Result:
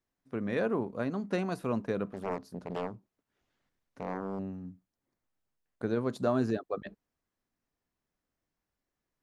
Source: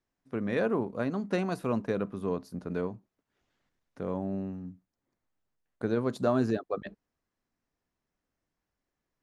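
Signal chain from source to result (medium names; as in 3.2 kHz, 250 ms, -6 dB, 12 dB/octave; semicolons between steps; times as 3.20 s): 2.09–4.39 s: loudspeaker Doppler distortion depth 0.94 ms; trim -2 dB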